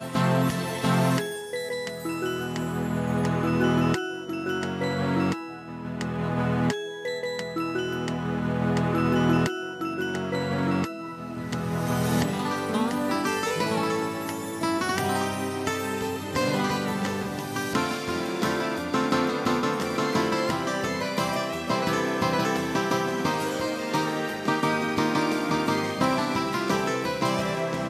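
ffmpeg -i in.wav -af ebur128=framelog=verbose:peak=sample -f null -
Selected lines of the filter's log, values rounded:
Integrated loudness:
  I:         -26.6 LUFS
  Threshold: -36.6 LUFS
Loudness range:
  LRA:         2.2 LU
  Threshold: -46.7 LUFS
  LRA low:   -27.9 LUFS
  LRA high:  -25.6 LUFS
Sample peak:
  Peak:       -9.5 dBFS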